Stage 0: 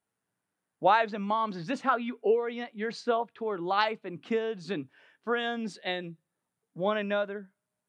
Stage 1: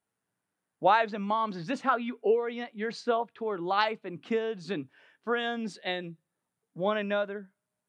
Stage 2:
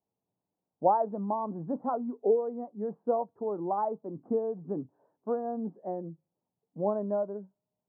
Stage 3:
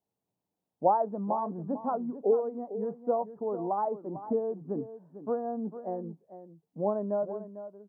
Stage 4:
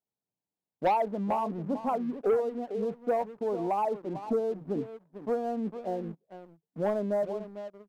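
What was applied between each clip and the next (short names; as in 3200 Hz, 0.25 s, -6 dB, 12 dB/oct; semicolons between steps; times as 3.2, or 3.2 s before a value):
nothing audible
steep low-pass 930 Hz 36 dB/oct
echo 0.449 s -12.5 dB
sample leveller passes 2; gain -5.5 dB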